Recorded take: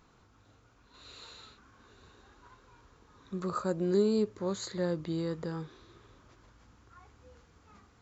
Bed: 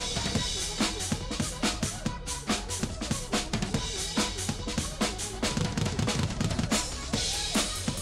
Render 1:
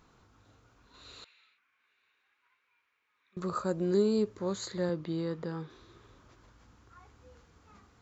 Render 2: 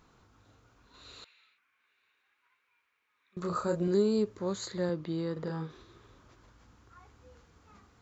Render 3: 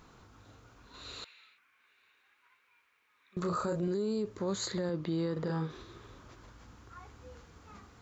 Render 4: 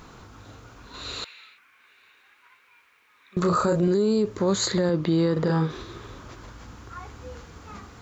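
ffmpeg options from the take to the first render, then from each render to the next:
-filter_complex "[0:a]asettb=1/sr,asplit=3[s0][s1][s2];[s0]atrim=end=1.244[s3];[s1]atrim=start=1.24:end=3.37,asetpts=PTS-STARTPTS,afade=t=in:d=0.004:c=qsin,afade=t=out:st=2.126:d=0.004:c=qsin,bandpass=f=2300:t=q:w=4.9[s4];[s2]atrim=start=3.366[s5];[s3][s4]acrossfade=d=0.004:c1=hsin:c2=qsin[s6];[s6][s5]acrossfade=d=0.004:c1=qsin:c2=hsin,asettb=1/sr,asplit=3[s7][s8][s9];[s7]atrim=end=4.894[s10];[s8]atrim=start=4.89:end=5.7,asetpts=PTS-STARTPTS,afade=t=in:d=0.004:c=qsin,afade=t=out:st=0.806:d=0.004:c=qsin,highpass=110,lowpass=4900[s11];[s9]atrim=start=5.696[s12];[s10][s11]acrossfade=d=0.004:c1=hsin:c2=qsin[s13];[s13][s12]acrossfade=d=0.004:c1=qsin:c2=hsin"
-filter_complex "[0:a]asettb=1/sr,asplit=3[s0][s1][s2];[s0]atrim=end=3.404[s3];[s1]atrim=start=3.4:end=3.88,asetpts=PTS-STARTPTS,afade=t=in:d=0.004:c=qsin,afade=t=out:st=0.476:d=0.004:c=qsin,asplit=2[s4][s5];[s5]adelay=29,volume=0.631[s6];[s4][s6]amix=inputs=2:normalize=0,atrim=end_sample=21168[s7];[s2]atrim=start=3.876[s8];[s3][s7]acrossfade=d=0.004:c1=hsin:c2=qsin[s9];[s9][s8]acrossfade=d=0.004:c1=qsin:c2=hsin,asettb=1/sr,asplit=3[s10][s11][s12];[s10]atrim=end=5.324[s13];[s11]atrim=start=5.32:end=5.83,asetpts=PTS-STARTPTS,afade=t=in:d=0.004:c=qsin,afade=t=out:st=0.506:d=0.004:c=qsin,asplit=2[s14][s15];[s15]adelay=44,volume=0.596[s16];[s14][s16]amix=inputs=2:normalize=0,atrim=end_sample=22491[s17];[s12]atrim=start=5.826[s18];[s13][s17]acrossfade=d=0.004:c1=hsin:c2=qsin[s19];[s19][s18]acrossfade=d=0.004:c1=qsin:c2=hsin"
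-filter_complex "[0:a]asplit=2[s0][s1];[s1]acompressor=threshold=0.0126:ratio=6,volume=0.891[s2];[s0][s2]amix=inputs=2:normalize=0,alimiter=level_in=1.19:limit=0.0631:level=0:latency=1:release=14,volume=0.841"
-af "volume=3.55"

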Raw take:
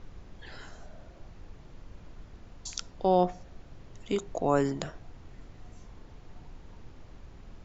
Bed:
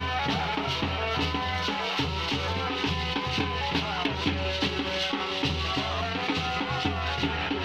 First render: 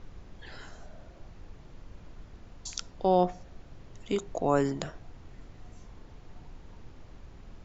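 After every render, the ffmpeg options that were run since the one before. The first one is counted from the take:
-af anull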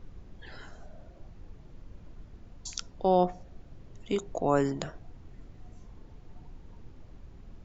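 -af "afftdn=nr=6:nf=-52"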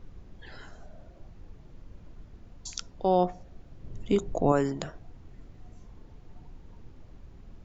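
-filter_complex "[0:a]asettb=1/sr,asplit=3[s0][s1][s2];[s0]atrim=end=3.834[s3];[s1]atrim=start=3.83:end=4.52,asetpts=PTS-STARTPTS,afade=t=in:d=0.004:c=qsin,afade=t=out:st=0.686:d=0.004:c=qsin,lowshelf=f=380:g=9[s4];[s2]atrim=start=4.516[s5];[s3][s4]acrossfade=d=0.004:c1=hsin:c2=qsin[s6];[s6][s5]acrossfade=d=0.004:c1=qsin:c2=hsin"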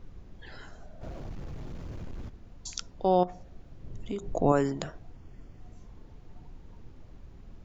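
-filter_complex "[0:a]asplit=3[s0][s1][s2];[s0]afade=t=out:st=1.01:d=0.02[s3];[s1]aeval=exprs='0.0188*sin(PI/2*3.16*val(0)/0.0188)':c=same,afade=t=in:st=1.01:d=0.02,afade=t=out:st=2.28:d=0.02[s4];[s2]afade=t=in:st=2.28:d=0.02[s5];[s3][s4][s5]amix=inputs=3:normalize=0,asettb=1/sr,asplit=3[s6][s7][s8];[s6]atrim=end=3.234[s9];[s7]atrim=start=3.23:end=4.24,asetpts=PTS-STARTPTS,afade=t=in:d=0.004:c=qsin,afade=t=out:st=1.006:d=0.004:c=qsin,acompressor=threshold=0.0224:ratio=3:attack=3.2:release=140:knee=1:detection=peak[s10];[s8]atrim=start=4.236[s11];[s9][s10]acrossfade=d=0.004:c1=hsin:c2=qsin[s12];[s12][s11]acrossfade=d=0.004:c1=qsin:c2=hsin,asettb=1/sr,asplit=3[s13][s14][s15];[s13]atrim=end=5.164[s16];[s14]atrim=start=5.16:end=5.61,asetpts=PTS-STARTPTS,afade=t=in:d=0.004:c=qsin,afade=t=out:st=0.446:d=0.004:c=qsin,asuperstop=centerf=3900:order=4:qfactor=6.5[s17];[s15]atrim=start=5.606[s18];[s16][s17]acrossfade=d=0.004:c1=hsin:c2=qsin[s19];[s19][s18]acrossfade=d=0.004:c1=qsin:c2=hsin"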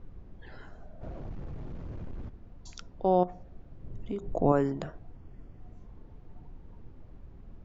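-af "lowpass=f=1400:p=1"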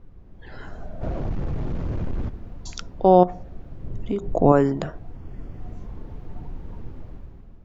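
-af "dynaudnorm=f=170:g=7:m=4.47"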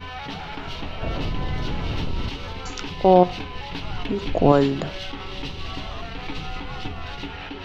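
-filter_complex "[1:a]volume=0.501[s0];[0:a][s0]amix=inputs=2:normalize=0"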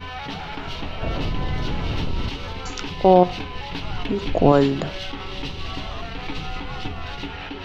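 -af "volume=1.19,alimiter=limit=0.794:level=0:latency=1"

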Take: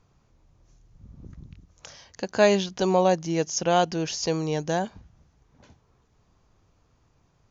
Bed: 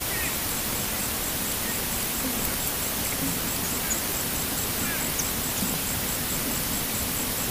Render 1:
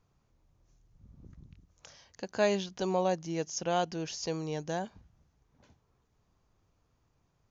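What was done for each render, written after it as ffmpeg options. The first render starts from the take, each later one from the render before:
-af "volume=0.376"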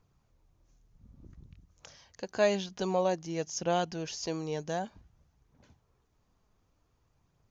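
-af "aphaser=in_gain=1:out_gain=1:delay=4.9:decay=0.26:speed=0.54:type=triangular"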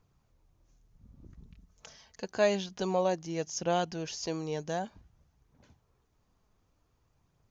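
-filter_complex "[0:a]asettb=1/sr,asplit=3[s0][s1][s2];[s0]atrim=end=1.374[s3];[s1]atrim=start=1.37:end=2.26,asetpts=PTS-STARTPTS,afade=t=in:d=0.004:c=qsin,afade=t=out:st=0.886:d=0.004:c=qsin,aecho=1:1:4.6:0.53,atrim=end_sample=39249[s4];[s2]atrim=start=2.256[s5];[s3][s4]acrossfade=d=0.004:c1=hsin:c2=qsin[s6];[s6][s5]acrossfade=d=0.004:c1=qsin:c2=hsin"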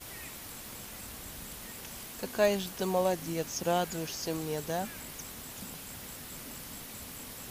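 -filter_complex "[1:a]volume=0.15[s0];[0:a][s0]amix=inputs=2:normalize=0"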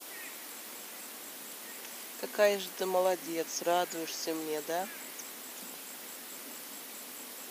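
-af "highpass=f=260:w=0.5412,highpass=f=260:w=1.3066,adynamicequalizer=threshold=0.002:dfrequency=2000:dqfactor=3.3:tfrequency=2000:tqfactor=3.3:attack=5:release=100:ratio=0.375:range=1.5:mode=boostabove:tftype=bell"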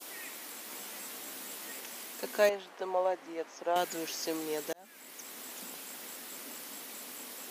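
-filter_complex "[0:a]asettb=1/sr,asplit=3[s0][s1][s2];[s0]atrim=end=0.694[s3];[s1]atrim=start=0.69:end=1.8,asetpts=PTS-STARTPTS,afade=t=in:d=0.004:c=qsin,afade=t=out:st=1.106:d=0.004:c=qsin,asplit=2[s4][s5];[s5]adelay=15,volume=0.631[s6];[s4][s6]amix=inputs=2:normalize=0,atrim=end_sample=48951[s7];[s2]atrim=start=1.796[s8];[s3][s7]acrossfade=d=0.004:c1=hsin:c2=qsin[s9];[s9][s8]acrossfade=d=0.004:c1=qsin:c2=hsin,asettb=1/sr,asplit=3[s10][s11][s12];[s10]atrim=end=2.494[s13];[s11]atrim=start=2.49:end=3.76,asetpts=PTS-STARTPTS,afade=t=in:d=0.004:c=qsin,afade=t=out:st=1.266:d=0.004:c=qsin,bandpass=f=850:t=q:w=0.8[s14];[s12]atrim=start=3.756[s15];[s13][s14]acrossfade=d=0.004:c1=hsin:c2=qsin[s16];[s16][s15]acrossfade=d=0.004:c1=qsin:c2=hsin,asplit=2[s17][s18];[s17]atrim=end=4.73,asetpts=PTS-STARTPTS,afade=t=out:st=4.726:d=0.004:c=hsin[s19];[s18]atrim=start=4.73,asetpts=PTS-STARTPTS,afade=t=in:d=0.69[s20];[s19][s20]concat=n=2:v=0:a=1"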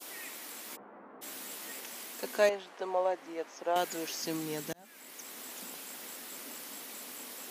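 -filter_complex "[0:a]asplit=3[s0][s1][s2];[s0]afade=t=out:st=0.75:d=0.02[s3];[s1]lowpass=f=1300:w=0.5412,lowpass=f=1300:w=1.3066,afade=t=in:st=0.75:d=0.02,afade=t=out:st=1.21:d=0.02[s4];[s2]afade=t=in:st=1.21:d=0.02[s5];[s3][s4][s5]amix=inputs=3:normalize=0,asettb=1/sr,asplit=3[s6][s7][s8];[s6]atrim=end=2.364[s9];[s7]atrim=start=2.36:end=3.17,asetpts=PTS-STARTPTS,afade=t=in:d=0.004:c=qsin,afade=t=out:st=0.806:d=0.004:c=qsin,lowpass=11000[s10];[s8]atrim=start=3.166[s11];[s9][s10]acrossfade=d=0.004:c1=hsin:c2=qsin[s12];[s12][s11]acrossfade=d=0.004:c1=qsin:c2=hsin,asplit=3[s13][s14][s15];[s13]afade=t=out:st=4.21:d=0.02[s16];[s14]asubboost=boost=9.5:cutoff=160,afade=t=in:st=4.21:d=0.02,afade=t=out:st=4.81:d=0.02[s17];[s15]afade=t=in:st=4.81:d=0.02[s18];[s16][s17][s18]amix=inputs=3:normalize=0"

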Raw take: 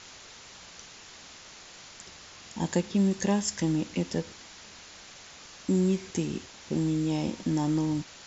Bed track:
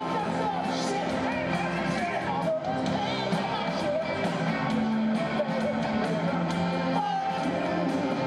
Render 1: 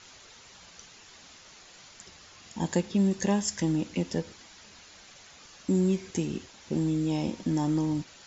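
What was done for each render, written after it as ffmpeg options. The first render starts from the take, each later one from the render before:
-af "afftdn=nr=6:nf=-49"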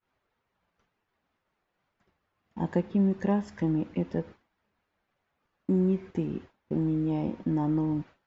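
-af "agate=range=0.0224:threshold=0.0126:ratio=3:detection=peak,lowpass=1600"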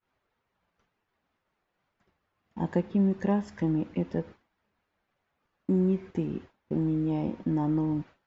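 -af anull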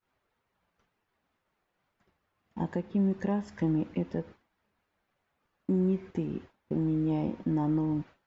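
-af "alimiter=limit=0.106:level=0:latency=1:release=351"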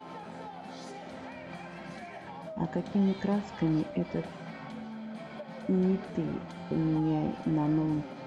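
-filter_complex "[1:a]volume=0.178[s0];[0:a][s0]amix=inputs=2:normalize=0"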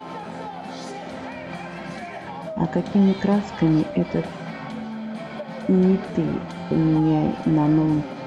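-af "volume=2.99"

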